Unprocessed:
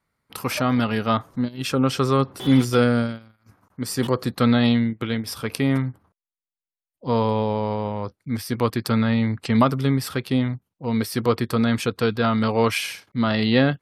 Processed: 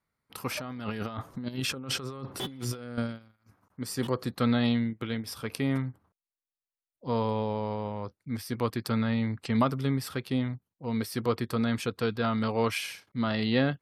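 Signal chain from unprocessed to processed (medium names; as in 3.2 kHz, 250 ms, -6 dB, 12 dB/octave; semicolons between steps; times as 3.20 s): 0.60–2.98 s: compressor with a negative ratio -29 dBFS, ratio -1; trim -7.5 dB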